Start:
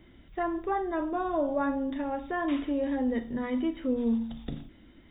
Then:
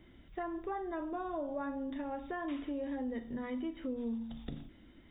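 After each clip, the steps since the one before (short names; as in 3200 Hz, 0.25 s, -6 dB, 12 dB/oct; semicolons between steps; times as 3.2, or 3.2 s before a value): compressor 2.5:1, threshold -34 dBFS, peak gain reduction 7.5 dB; gain -3.5 dB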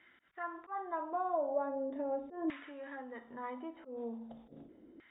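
auto swell 0.125 s; LFO band-pass saw down 0.4 Hz 380–1800 Hz; gain +8.5 dB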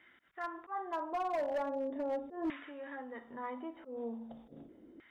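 hard clip -31.5 dBFS, distortion -15 dB; gain +1 dB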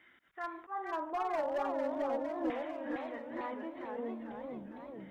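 warbling echo 0.451 s, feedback 61%, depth 220 cents, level -4.5 dB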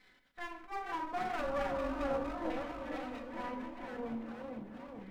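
minimum comb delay 4 ms; shoebox room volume 770 m³, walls furnished, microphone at 1.1 m; gain -1 dB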